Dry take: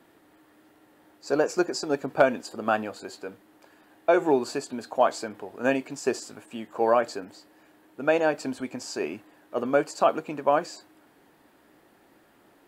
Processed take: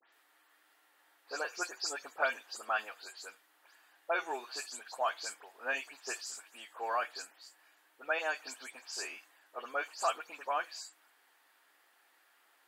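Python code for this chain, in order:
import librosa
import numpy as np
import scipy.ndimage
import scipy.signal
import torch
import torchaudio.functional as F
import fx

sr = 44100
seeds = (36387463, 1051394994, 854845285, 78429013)

y = fx.spec_delay(x, sr, highs='late', ms=120)
y = scipy.signal.sosfilt(scipy.signal.butter(2, 1200.0, 'highpass', fs=sr, output='sos'), y)
y = y * 10.0 ** (-2.5 / 20.0)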